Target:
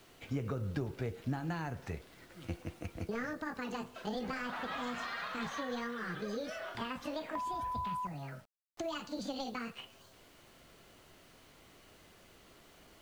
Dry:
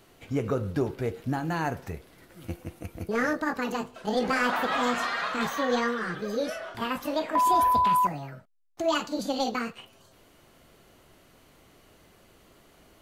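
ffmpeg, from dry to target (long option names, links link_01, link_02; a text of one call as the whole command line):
ffmpeg -i in.wav -filter_complex "[0:a]lowpass=7300,equalizer=frequency=3200:width=0.41:gain=3.5,acrossover=split=180[link_01][link_02];[link_02]acompressor=threshold=-33dB:ratio=8[link_03];[link_01][link_03]amix=inputs=2:normalize=0,acrusher=bits=9:mix=0:aa=0.000001,volume=-4dB" out.wav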